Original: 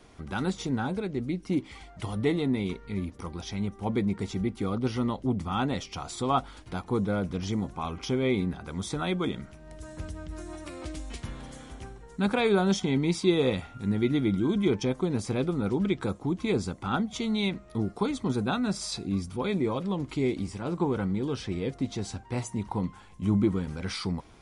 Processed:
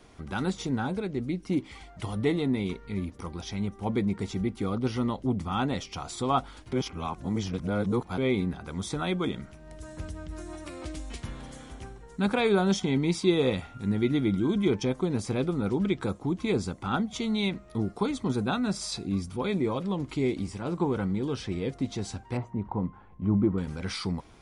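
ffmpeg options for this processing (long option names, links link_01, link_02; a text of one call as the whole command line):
ffmpeg -i in.wav -filter_complex "[0:a]asettb=1/sr,asplit=3[link_01][link_02][link_03];[link_01]atrim=end=22.374[link_04];[link_02]atrim=start=22.37:end=23.58,asetpts=PTS-STARTPTS,afade=type=in:duration=0.004:curve=qsin,afade=type=out:start_time=1.206:duration=0.004:curve=qsin,lowpass=1300[link_05];[link_03]atrim=start=23.576[link_06];[link_04][link_05]acrossfade=duration=0.004:curve1=hsin:curve2=qsin[link_07];[link_07][link_06]acrossfade=duration=0.004:curve1=qsin:curve2=hsin,asplit=3[link_08][link_09][link_10];[link_08]atrim=end=6.732[link_11];[link_09]atrim=start=6.728:end=8.182,asetpts=PTS-STARTPTS,areverse[link_12];[link_10]atrim=start=8.178[link_13];[link_11][link_12]acrossfade=duration=0.004:curve1=hsin:curve2=hsin[link_14];[link_14][link_13]acrossfade=duration=0.004:curve1=hsin:curve2=hsin" out.wav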